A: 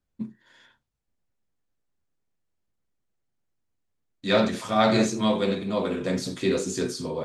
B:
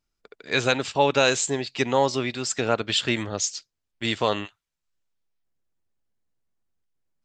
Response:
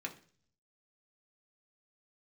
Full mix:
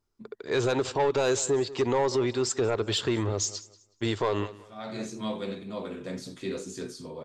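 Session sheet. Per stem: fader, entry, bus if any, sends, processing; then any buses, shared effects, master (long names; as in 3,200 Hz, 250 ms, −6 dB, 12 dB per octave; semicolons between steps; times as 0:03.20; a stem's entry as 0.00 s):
−9.5 dB, 0.00 s, no send, no echo send, automatic ducking −20 dB, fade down 0.80 s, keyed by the second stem
−2.0 dB, 0.00 s, no send, echo send −21 dB, graphic EQ with 15 bands 100 Hz +10 dB, 400 Hz +11 dB, 1,000 Hz +7 dB, 2,500 Hz −5 dB; soft clipping −10.5 dBFS, distortion −13 dB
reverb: not used
echo: repeating echo 185 ms, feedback 24%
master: brickwall limiter −18.5 dBFS, peak gain reduction 6.5 dB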